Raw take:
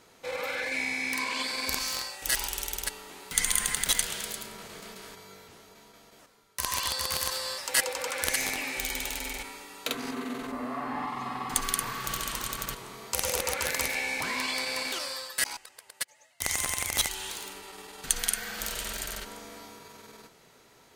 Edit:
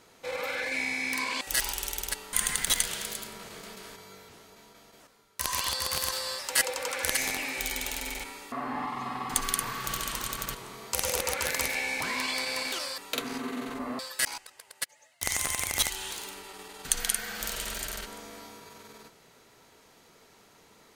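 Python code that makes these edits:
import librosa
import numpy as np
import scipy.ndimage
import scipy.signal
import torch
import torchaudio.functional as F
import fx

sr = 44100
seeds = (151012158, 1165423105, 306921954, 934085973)

y = fx.edit(x, sr, fx.cut(start_s=1.41, length_s=0.75),
    fx.cut(start_s=3.08, length_s=0.44),
    fx.move(start_s=9.71, length_s=1.01, to_s=15.18), tone=tone)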